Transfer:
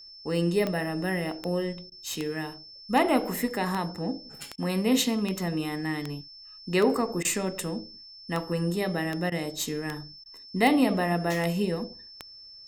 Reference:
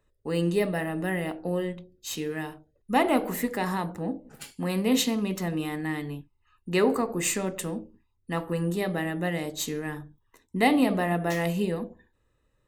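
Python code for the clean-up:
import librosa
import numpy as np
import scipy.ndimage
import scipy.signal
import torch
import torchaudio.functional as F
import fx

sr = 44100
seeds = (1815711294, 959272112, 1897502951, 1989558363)

y = fx.fix_declick_ar(x, sr, threshold=10.0)
y = fx.notch(y, sr, hz=5300.0, q=30.0)
y = fx.fix_interpolate(y, sr, at_s=(1.9, 4.56, 7.23, 9.3, 10.24), length_ms=17.0)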